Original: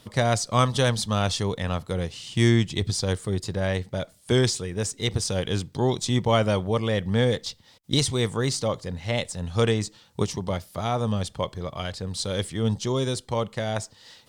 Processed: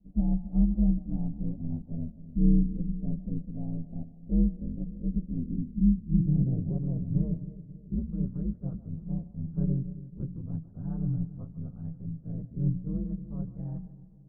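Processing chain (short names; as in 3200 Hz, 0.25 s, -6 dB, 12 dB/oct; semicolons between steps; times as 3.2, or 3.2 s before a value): inharmonic rescaling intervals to 109%; HPF 95 Hz; notches 50/100/150/200/250 Hz; low-pass sweep 130 Hz -> 1500 Hz, 5.96–7.09; ring modulator 79 Hz; low-pass sweep 760 Hz -> 160 Hz, 4.76–6.01; on a send: split-band echo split 530 Hz, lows 0.272 s, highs 0.149 s, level -14.5 dB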